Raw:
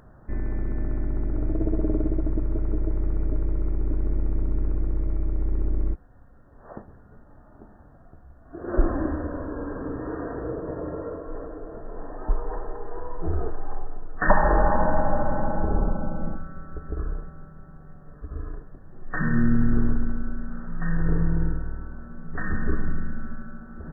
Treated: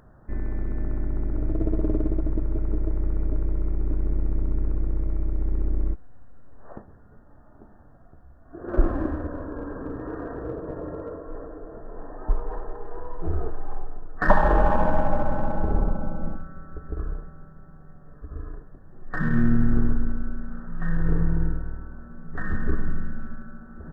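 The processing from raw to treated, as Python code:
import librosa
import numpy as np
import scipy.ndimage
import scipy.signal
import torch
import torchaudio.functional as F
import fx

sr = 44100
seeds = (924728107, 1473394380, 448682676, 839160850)

p1 = fx.backlash(x, sr, play_db=-19.0)
p2 = x + (p1 * librosa.db_to_amplitude(-7.5))
p3 = fx.quant_float(p2, sr, bits=8)
y = p3 * librosa.db_to_amplitude(-2.0)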